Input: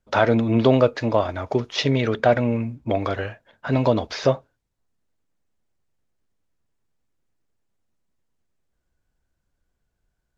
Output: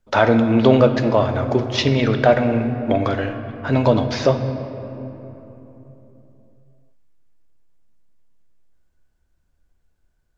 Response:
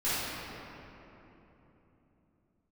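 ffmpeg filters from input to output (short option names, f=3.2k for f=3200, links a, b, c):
-filter_complex "[0:a]asplit=2[a][b];[1:a]atrim=start_sample=2205,lowshelf=f=62:g=10.5[c];[b][c]afir=irnorm=-1:irlink=0,volume=-18dB[d];[a][d]amix=inputs=2:normalize=0,volume=2dB"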